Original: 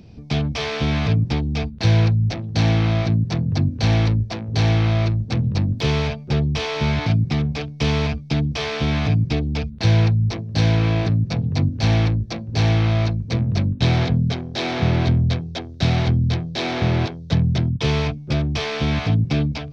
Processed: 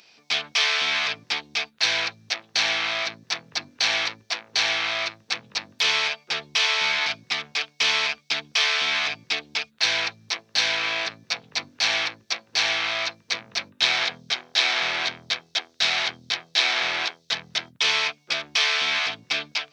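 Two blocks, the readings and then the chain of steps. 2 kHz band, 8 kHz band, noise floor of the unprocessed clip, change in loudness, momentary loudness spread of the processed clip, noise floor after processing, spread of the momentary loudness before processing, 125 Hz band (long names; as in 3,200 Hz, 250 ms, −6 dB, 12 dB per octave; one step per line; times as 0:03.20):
+7.0 dB, can't be measured, −35 dBFS, −3.0 dB, 8 LU, −62 dBFS, 5 LU, −35.5 dB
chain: high-pass filter 1,500 Hz 12 dB per octave
level +8 dB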